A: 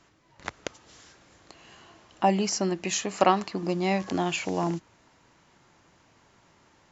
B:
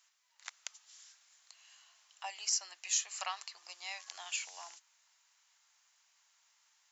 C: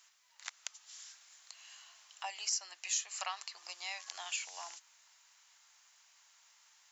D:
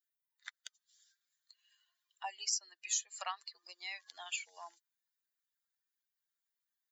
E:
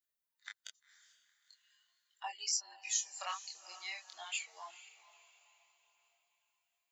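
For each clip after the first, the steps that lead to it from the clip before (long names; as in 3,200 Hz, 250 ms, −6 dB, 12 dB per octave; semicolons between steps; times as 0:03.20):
high-pass filter 720 Hz 24 dB per octave; first difference
downward compressor 1.5 to 1, threshold −52 dBFS, peak gain reduction 9 dB; level +6 dB
spectral dynamics exaggerated over time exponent 2; level +2.5 dB
feedback delay with all-pass diffusion 467 ms, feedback 43%, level −16 dB; multi-voice chorus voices 2, 0.41 Hz, delay 24 ms, depth 4.9 ms; level +3.5 dB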